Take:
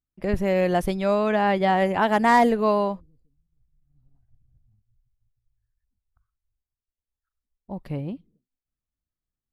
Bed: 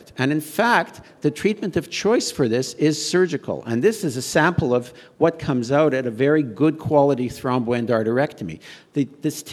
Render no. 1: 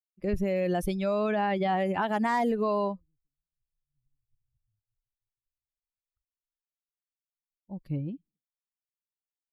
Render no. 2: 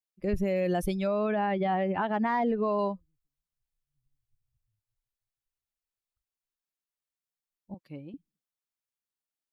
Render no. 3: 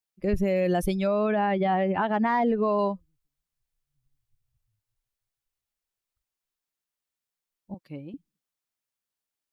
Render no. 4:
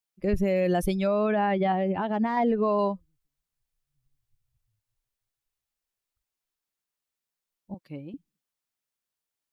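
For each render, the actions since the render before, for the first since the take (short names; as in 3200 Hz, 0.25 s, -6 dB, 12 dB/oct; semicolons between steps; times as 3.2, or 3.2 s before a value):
per-bin expansion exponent 1.5; limiter -19.5 dBFS, peak gain reduction 9.5 dB
1.07–2.79 air absorption 240 m; 7.74–8.14 weighting filter A
gain +3.5 dB
1.72–2.37 bell 1500 Hz -7 dB 1.9 oct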